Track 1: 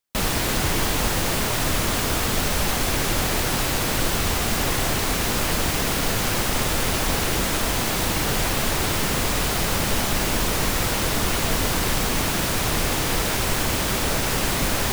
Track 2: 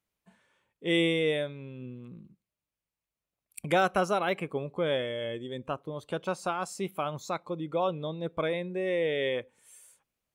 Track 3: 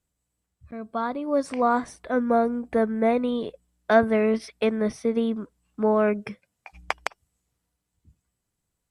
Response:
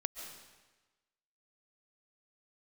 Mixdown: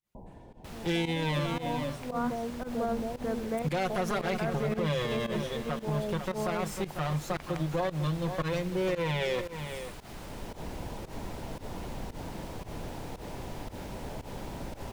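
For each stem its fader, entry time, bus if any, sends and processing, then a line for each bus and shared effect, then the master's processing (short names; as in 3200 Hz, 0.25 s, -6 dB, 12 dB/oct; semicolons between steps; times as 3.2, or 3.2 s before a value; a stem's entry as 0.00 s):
-14.0 dB, 0.00 s, bus A, no send, echo send -8.5 dB, high shelf 5700 Hz -7 dB; auto duck -10 dB, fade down 0.25 s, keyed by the second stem
+1.5 dB, 0.00 s, no bus, no send, echo send -11.5 dB, minimum comb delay 5.6 ms; bell 150 Hz +12.5 dB 0.24 oct
-5.0 dB, 0.00 s, bus A, no send, echo send -3.5 dB, tremolo saw up 1.6 Hz, depth 60%
bus A: 0.0 dB, Chebyshev low-pass 1000 Hz, order 8; limiter -28.5 dBFS, peak gain reduction 11 dB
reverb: off
echo: echo 0.496 s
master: pump 114 bpm, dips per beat 1, -18 dB, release 0.109 s; limiter -21.5 dBFS, peak gain reduction 9.5 dB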